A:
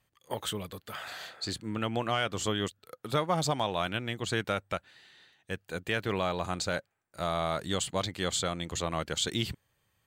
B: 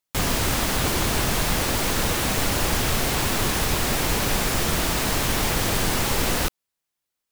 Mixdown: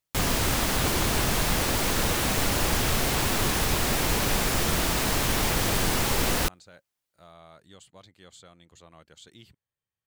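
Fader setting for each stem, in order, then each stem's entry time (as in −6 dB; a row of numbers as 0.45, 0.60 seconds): −20.0, −2.0 decibels; 0.00, 0.00 seconds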